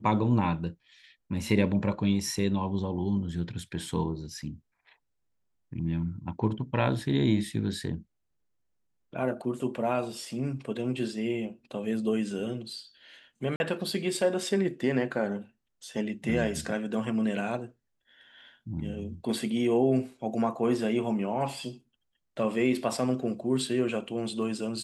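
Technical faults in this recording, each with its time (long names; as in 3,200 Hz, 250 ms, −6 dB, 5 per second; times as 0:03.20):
0:13.56–0:13.60: drop-out 41 ms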